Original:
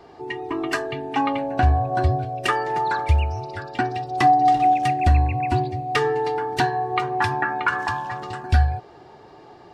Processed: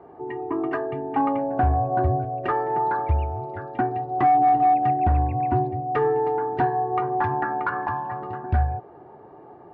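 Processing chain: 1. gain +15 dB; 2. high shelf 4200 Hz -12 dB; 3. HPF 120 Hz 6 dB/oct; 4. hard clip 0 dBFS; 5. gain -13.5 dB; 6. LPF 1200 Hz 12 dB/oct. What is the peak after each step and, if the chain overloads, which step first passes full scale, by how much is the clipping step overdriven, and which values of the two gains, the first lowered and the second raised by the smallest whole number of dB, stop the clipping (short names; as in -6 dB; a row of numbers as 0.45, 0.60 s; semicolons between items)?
+7.0, +6.5, +6.5, 0.0, -13.5, -13.0 dBFS; step 1, 6.5 dB; step 1 +8 dB, step 5 -6.5 dB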